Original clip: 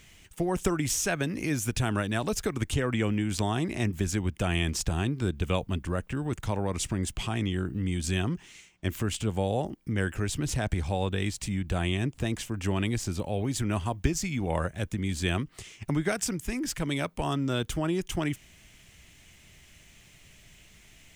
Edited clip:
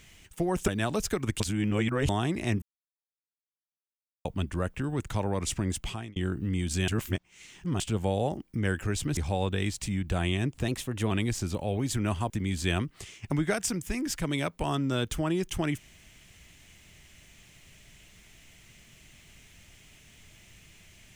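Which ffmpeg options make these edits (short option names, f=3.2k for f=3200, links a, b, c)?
-filter_complex "[0:a]asplit=13[a][b][c][d][e][f][g][h][i][j][k][l][m];[a]atrim=end=0.682[n];[b]atrim=start=2.008:end=2.732[o];[c]atrim=start=2.728:end=3.422,asetpts=PTS-STARTPTS,areverse[p];[d]atrim=start=3.418:end=3.95,asetpts=PTS-STARTPTS,afade=t=out:st=0.528:d=0.004:c=hsin[q];[e]atrim=start=3.95:end=5.58,asetpts=PTS-STARTPTS,volume=0[r];[f]atrim=start=5.58:end=7.49,asetpts=PTS-STARTPTS,afade=t=in:d=0.004:c=hsin,afade=t=out:st=1.55:d=0.36[s];[g]atrim=start=7.49:end=8.212,asetpts=PTS-STARTPTS,afade=t=in:d=0.004:c=hsin[t];[h]atrim=start=8.208:end=9.132,asetpts=PTS-STARTPTS,areverse[u];[i]atrim=start=9.128:end=10.502[v];[j]atrim=start=10.768:end=12.284[w];[k]atrim=start=12.28:end=12.76,asetpts=PTS-STARTPTS,asetrate=49392,aresample=44100[x];[l]atrim=start=12.756:end=13.952[y];[m]atrim=start=14.878[z];[n][o]acrossfade=d=0.004:c1=hsin:c2=hsin[aa];[aa][p]acrossfade=d=0.004:c1=hsin:c2=hsin[ab];[q][r][s][t]concat=n=4:v=0:a=1[ac];[ab][ac]acrossfade=d=0.004:c1=hsin:c2=hsin[ad];[ad][u]acrossfade=d=0.004:c1=hsin:c2=hsin[ae];[ae][v]acrossfade=d=0.004:c1=hsin:c2=hsin[af];[af][w]acrossfade=d=0.004:c1=hsin:c2=hsin[ag];[ag][x]acrossfade=d=0.004:c1=hsin:c2=hsin[ah];[ah][y]acrossfade=d=0.004:c1=hsin:c2=hsin[ai];[ai][z]acrossfade=d=0.004:c1=hsin:c2=hsin"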